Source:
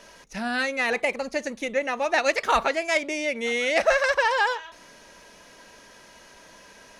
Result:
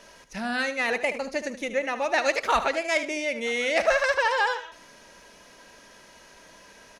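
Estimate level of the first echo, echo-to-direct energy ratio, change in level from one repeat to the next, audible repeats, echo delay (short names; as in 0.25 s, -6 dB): -12.0 dB, -11.5 dB, -12.5 dB, 2, 75 ms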